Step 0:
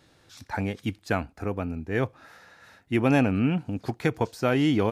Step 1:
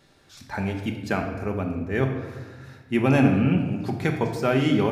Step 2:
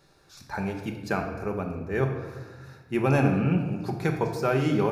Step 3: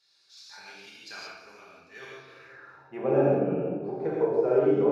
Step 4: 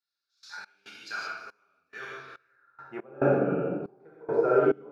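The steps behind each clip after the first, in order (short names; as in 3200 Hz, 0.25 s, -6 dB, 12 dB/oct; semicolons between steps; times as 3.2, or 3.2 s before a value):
shoebox room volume 1000 m³, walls mixed, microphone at 1.2 m
thirty-one-band EQ 100 Hz -8 dB, 250 Hz -11 dB, 630 Hz -3 dB, 2000 Hz -7 dB, 3150 Hz -10 dB, 8000 Hz -4 dB
non-linear reverb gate 0.2 s flat, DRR -5.5 dB; band-pass sweep 4400 Hz -> 490 Hz, 2.21–3.11
bell 1400 Hz +13.5 dB 0.39 oct; step gate "..x.xxx..xx" 70 bpm -24 dB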